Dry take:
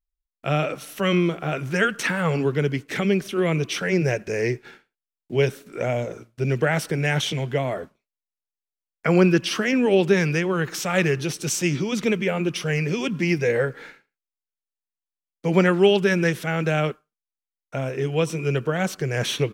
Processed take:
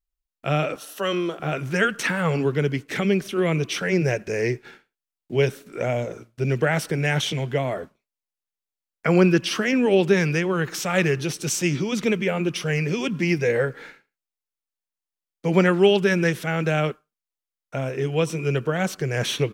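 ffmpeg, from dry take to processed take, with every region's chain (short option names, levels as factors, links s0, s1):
-filter_complex "[0:a]asettb=1/sr,asplit=3[s0][s1][s2];[s0]atrim=end=0.764[s3];[s1]atrim=start=0.76:end=1.4,asetpts=PTS-STARTPTS,afade=t=in:d=0.004:c=qsin,afade=t=out:st=0.636:d=0.004:c=qsin,highpass=340,equalizer=f=2200:w=6.2:g=-14[s4];[s2]atrim=start=1.396[s5];[s3][s4]acrossfade=d=0.004:c1=hsin:c2=qsin[s6];[s6][s5]acrossfade=d=0.004:c1=qsin:c2=hsin"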